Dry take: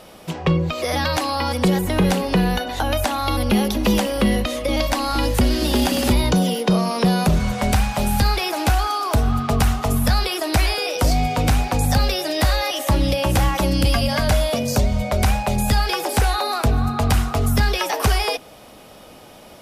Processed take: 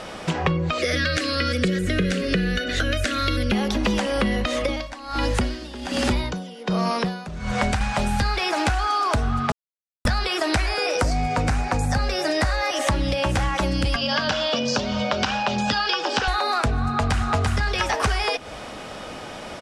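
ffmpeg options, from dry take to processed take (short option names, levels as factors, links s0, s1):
-filter_complex "[0:a]asettb=1/sr,asplit=3[s0][s1][s2];[s0]atrim=end=0.784[s3];[s1]atrim=start=0.78:end=3.52,asetpts=PTS-STARTPTS,afade=t=in:d=0.004:c=qsin,afade=t=out:st=2.736:d=0.004:c=qsin,asuperstop=centerf=890:order=4:qfactor=1.1[s4];[s2]atrim=start=3.516[s5];[s3][s4]acrossfade=d=0.004:c1=hsin:c2=qsin[s6];[s6][s5]acrossfade=d=0.004:c1=qsin:c2=hsin,asettb=1/sr,asplit=3[s7][s8][s9];[s7]atrim=end=4.594[s10];[s8]atrim=start=4.59:end=7.81,asetpts=PTS-STARTPTS,afade=t=in:d=0.004:c=qsin,afade=t=out:st=3.216:d=0.004:c=qsin,aeval=exprs='val(0)*pow(10,-25*(0.5-0.5*cos(2*PI*1.3*n/s))/20)':c=same[s11];[s9]atrim=start=7.806[s12];[s10][s11]acrossfade=d=0.004:c1=hsin:c2=qsin[s13];[s13][s12]acrossfade=d=0.004:c1=qsin:c2=hsin,asettb=1/sr,asplit=3[s14][s15][s16];[s14]atrim=end=10.624[s17];[s15]atrim=start=10.62:end=12.81,asetpts=PTS-STARTPTS,afade=t=in:d=0.004:c=qsin,afade=t=out:st=2.186:d=0.004:c=qsin,equalizer=f=3300:w=2:g=-7[s18];[s16]atrim=start=12.806[s19];[s17][s18]acrossfade=d=0.004:c1=hsin:c2=qsin[s20];[s20][s19]acrossfade=d=0.004:c1=qsin:c2=hsin,asettb=1/sr,asplit=3[s21][s22][s23];[s21]atrim=end=13.964[s24];[s22]atrim=start=13.96:end=16.28,asetpts=PTS-STARTPTS,afade=t=in:d=0.004:c=qsin,afade=t=out:st=2.316:d=0.004:c=qsin,highpass=220,equalizer=f=390:t=q:w=4:g=-4,equalizer=f=680:t=q:w=4:g=-6,equalizer=f=2100:t=q:w=4:g=-9,equalizer=f=3000:t=q:w=4:g=7,equalizer=f=5300:t=q:w=4:g=4,lowpass=f=5700:w=0.5412,lowpass=f=5700:w=1.3066[s25];[s23]atrim=start=16.276[s26];[s24][s25]acrossfade=d=0.004:c1=hsin:c2=qsin[s27];[s27][s26]acrossfade=d=0.004:c1=qsin:c2=hsin,asplit=2[s28][s29];[s29]afade=t=in:st=16.86:d=0.01,afade=t=out:st=17.27:d=0.01,aecho=0:1:340|680|1020|1360:0.944061|0.236015|0.0590038|0.014751[s30];[s28][s30]amix=inputs=2:normalize=0,asplit=3[s31][s32][s33];[s31]atrim=end=9.52,asetpts=PTS-STARTPTS,afade=t=out:st=9.516:d=0.004:c=hsin[s34];[s32]atrim=start=9.52:end=10.05,asetpts=PTS-STARTPTS,volume=0[s35];[s33]atrim=start=10.05,asetpts=PTS-STARTPTS,afade=t=in:d=0.004:c=hsin[s36];[s34][s35][s36]concat=n=3:v=0:a=1,lowpass=f=8700:w=0.5412,lowpass=f=8700:w=1.3066,equalizer=f=1600:w=1.3:g=6,acompressor=threshold=0.0447:ratio=6,volume=2.24"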